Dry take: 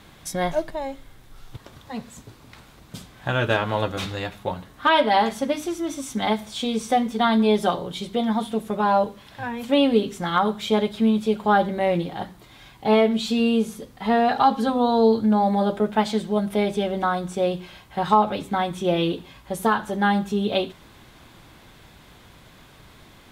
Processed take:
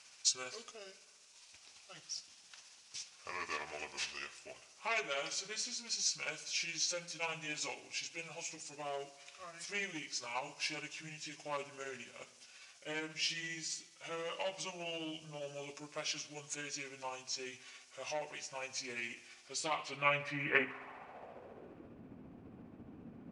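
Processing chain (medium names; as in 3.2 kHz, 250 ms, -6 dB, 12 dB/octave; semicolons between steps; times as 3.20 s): rotating-head pitch shifter -6 st; saturation -9.5 dBFS, distortion -23 dB; band-pass sweep 5.8 kHz -> 250 Hz, 19.37–22.02 s; spring tank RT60 1.5 s, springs 54 ms, chirp 55 ms, DRR 16.5 dB; trim +7 dB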